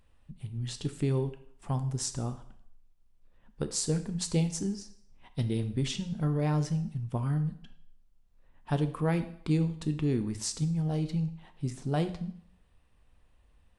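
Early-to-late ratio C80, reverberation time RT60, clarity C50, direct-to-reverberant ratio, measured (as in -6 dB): 15.5 dB, 0.65 s, 12.5 dB, 8.5 dB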